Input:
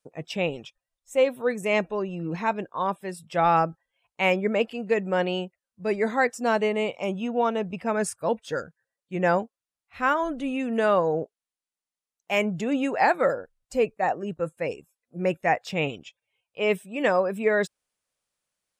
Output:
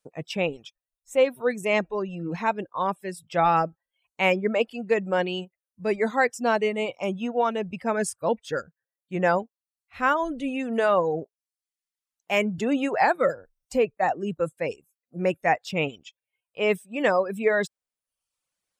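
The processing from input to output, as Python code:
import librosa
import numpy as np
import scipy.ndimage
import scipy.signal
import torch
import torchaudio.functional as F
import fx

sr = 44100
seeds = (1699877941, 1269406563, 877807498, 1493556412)

y = fx.dereverb_blind(x, sr, rt60_s=0.72)
y = fx.band_squash(y, sr, depth_pct=40, at=(12.58, 14.52))
y = F.gain(torch.from_numpy(y), 1.0).numpy()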